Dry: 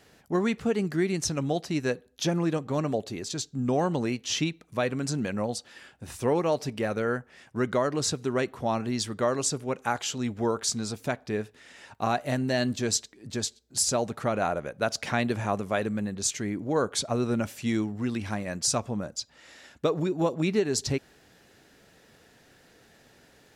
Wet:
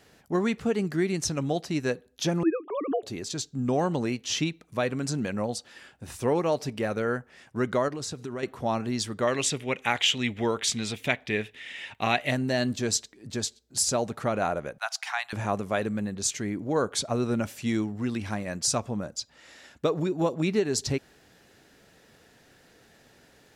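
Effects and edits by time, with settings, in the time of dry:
0:02.43–0:03.03: three sine waves on the formant tracks
0:07.88–0:08.43: downward compressor, threshold −31 dBFS
0:09.27–0:12.31: flat-topped bell 2,600 Hz +13.5 dB 1.2 octaves
0:14.78–0:15.33: elliptic high-pass filter 760 Hz

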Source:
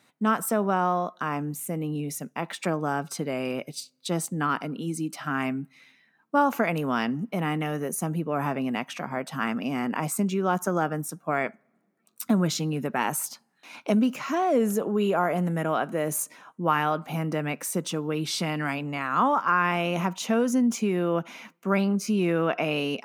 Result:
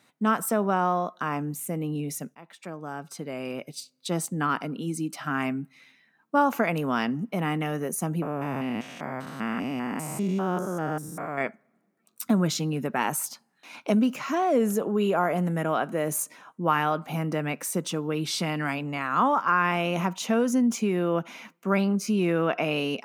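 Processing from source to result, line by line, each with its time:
0:02.35–0:04.25: fade in, from −19 dB
0:08.22–0:11.41: spectrum averaged block by block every 200 ms

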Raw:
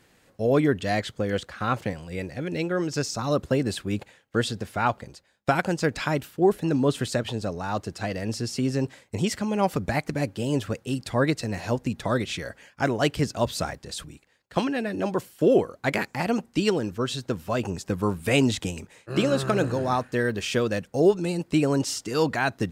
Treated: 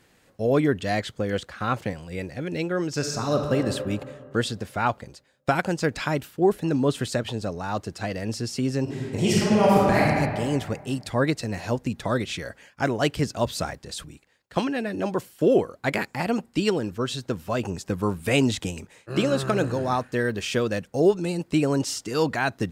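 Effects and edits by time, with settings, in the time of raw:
0:02.91–0:03.55: thrown reverb, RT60 2.2 s, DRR 3.5 dB
0:08.83–0:10.07: thrown reverb, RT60 1.9 s, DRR −6 dB
0:15.75–0:16.95: notch filter 6,100 Hz

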